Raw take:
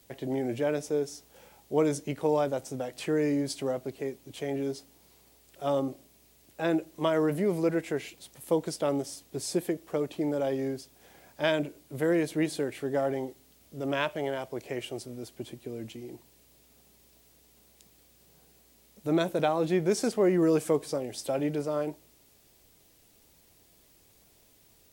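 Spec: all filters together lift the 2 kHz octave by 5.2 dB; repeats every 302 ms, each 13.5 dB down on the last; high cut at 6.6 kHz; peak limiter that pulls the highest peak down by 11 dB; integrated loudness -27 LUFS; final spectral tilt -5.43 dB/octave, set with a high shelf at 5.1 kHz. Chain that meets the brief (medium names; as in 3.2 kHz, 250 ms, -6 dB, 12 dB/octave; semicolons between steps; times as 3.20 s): low-pass 6.6 kHz; peaking EQ 2 kHz +8 dB; treble shelf 5.1 kHz -8.5 dB; peak limiter -19.5 dBFS; feedback delay 302 ms, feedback 21%, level -13.5 dB; trim +4.5 dB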